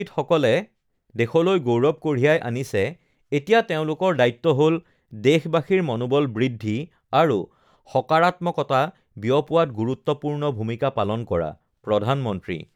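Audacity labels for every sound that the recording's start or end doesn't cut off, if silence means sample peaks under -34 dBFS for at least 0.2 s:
1.160000	2.930000	sound
3.320000	4.790000	sound
5.130000	6.850000	sound
7.130000	7.440000	sound
7.920000	8.900000	sound
9.170000	11.530000	sound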